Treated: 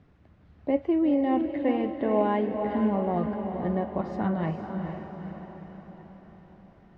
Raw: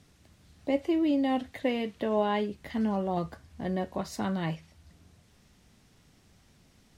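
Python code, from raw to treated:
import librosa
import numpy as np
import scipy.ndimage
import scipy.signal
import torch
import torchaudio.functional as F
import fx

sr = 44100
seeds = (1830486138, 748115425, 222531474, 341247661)

p1 = scipy.signal.sosfilt(scipy.signal.butter(2, 1600.0, 'lowpass', fs=sr, output='sos'), x)
p2 = p1 + fx.echo_diffused(p1, sr, ms=455, feedback_pct=55, wet_db=-6.0, dry=0)
y = p2 * librosa.db_to_amplitude(2.5)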